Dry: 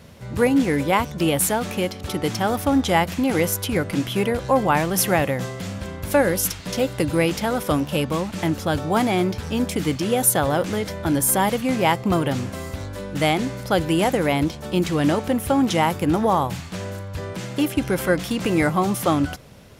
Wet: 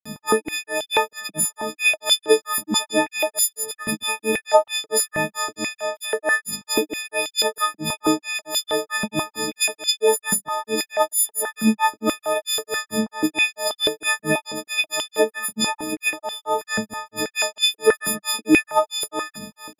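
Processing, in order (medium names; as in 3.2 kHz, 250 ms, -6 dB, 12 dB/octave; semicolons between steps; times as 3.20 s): partials quantised in pitch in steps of 6 st; compression 8:1, threshold -22 dBFS, peak gain reduction 21 dB; hum 50 Hz, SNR 17 dB; granulator 198 ms, grains 4.5 per s, pitch spread up and down by 0 st; step-sequenced high-pass 6.2 Hz 200–3300 Hz; trim +5.5 dB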